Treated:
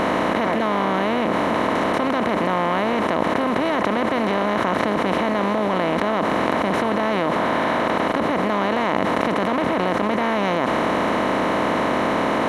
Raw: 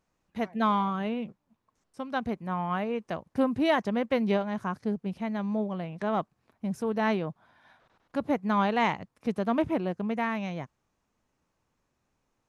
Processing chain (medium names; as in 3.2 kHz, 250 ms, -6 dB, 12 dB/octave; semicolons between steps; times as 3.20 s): spectral levelling over time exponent 0.2; level flattener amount 100%; trim -5 dB